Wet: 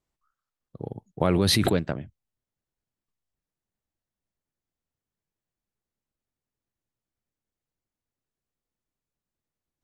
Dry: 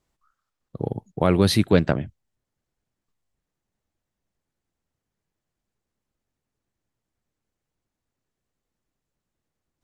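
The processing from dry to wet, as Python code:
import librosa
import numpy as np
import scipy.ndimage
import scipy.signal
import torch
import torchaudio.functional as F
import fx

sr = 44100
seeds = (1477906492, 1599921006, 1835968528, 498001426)

y = fx.env_flatten(x, sr, amount_pct=100, at=(1.2, 1.77))
y = y * librosa.db_to_amplitude(-8.0)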